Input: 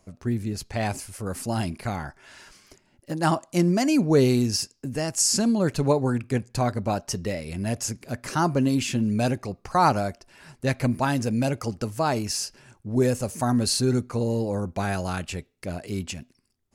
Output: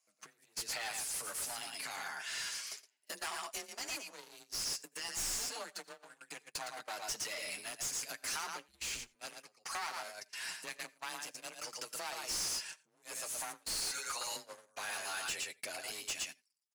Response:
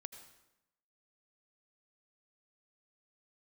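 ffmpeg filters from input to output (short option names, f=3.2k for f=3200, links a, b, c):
-filter_complex "[0:a]asettb=1/sr,asplit=3[a][b][c];[a]atrim=end=4.864[d];[b]atrim=start=4.86:end=5.76,asetpts=PTS-STARTPTS,afade=t=in:d=0.004:c=qsin,afade=t=out:st=0.896:d=0.004:c=qsin,aecho=1:1:7.2:0.75,atrim=end_sample=39690[e];[c]atrim=start=5.756[f];[d][e]acrossfade=d=0.004:c1=hsin:c2=qsin[g];[g][f]acrossfade=d=0.004:c1=qsin:c2=hsin,asplit=3[h][i][j];[h]afade=t=out:st=13.79:d=0.02[k];[i]highpass=830,afade=t=in:st=13.79:d=0.02,afade=t=out:st=14.35:d=0.02[l];[j]afade=t=in:st=14.35:d=0.02[m];[k][l][m]amix=inputs=3:normalize=0,aecho=1:1:114:0.531,flanger=delay=6.6:depth=1.6:regen=-19:speed=0.16:shape=sinusoidal,aeval=exprs='clip(val(0),-1,0.0299)':c=same,acompressor=threshold=-39dB:ratio=16,afreqshift=28,aderivative,asplit=2[n][o];[o]highpass=f=720:p=1,volume=23dB,asoftclip=type=tanh:threshold=-31dB[p];[n][p]amix=inputs=2:normalize=0,lowpass=f=3.5k:p=1,volume=-6dB,agate=range=-23dB:threshold=-51dB:ratio=16:detection=peak,asplit=2[q][r];[1:a]atrim=start_sample=2205,afade=t=out:st=0.14:d=0.01,atrim=end_sample=6615[s];[r][s]afir=irnorm=-1:irlink=0,volume=-2dB[t];[q][t]amix=inputs=2:normalize=0,asettb=1/sr,asplit=3[u][v][w];[u]atrim=end=8.684[x];[v]atrim=start=8.68:end=9.16,asetpts=PTS-STARTPTS,afade=t=in:d=0.004:c=qsin,afade=t=out:st=0.476:d=0.004:c=qsin,afreqshift=-230[y];[w]atrim=start=9.156[z];[x][y]acrossfade=d=0.004:c1=hsin:c2=qsin[aa];[aa][z]acrossfade=d=0.004:c1=qsin:c2=hsin,volume=3.5dB"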